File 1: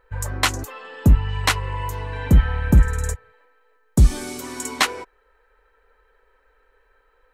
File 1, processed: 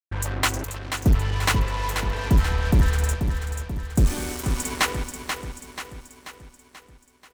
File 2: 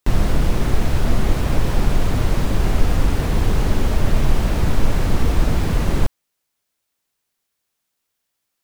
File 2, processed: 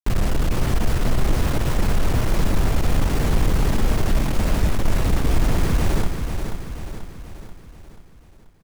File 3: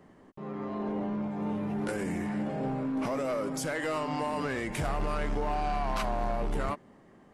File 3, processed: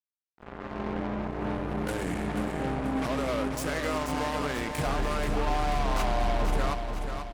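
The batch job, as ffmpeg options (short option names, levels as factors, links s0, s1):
-filter_complex "[0:a]equalizer=f=4000:w=1.5:g=-2.5,asoftclip=type=tanh:threshold=0.237,aeval=exprs='val(0)+0.00794*(sin(2*PI*60*n/s)+sin(2*PI*2*60*n/s)/2+sin(2*PI*3*60*n/s)/3+sin(2*PI*4*60*n/s)/4+sin(2*PI*5*60*n/s)/5)':c=same,acrusher=bits=4:mix=0:aa=0.5,asplit=2[s0][s1];[s1]aecho=0:1:485|970|1455|1940|2425|2910:0.447|0.232|0.121|0.0628|0.0327|0.017[s2];[s0][s2]amix=inputs=2:normalize=0"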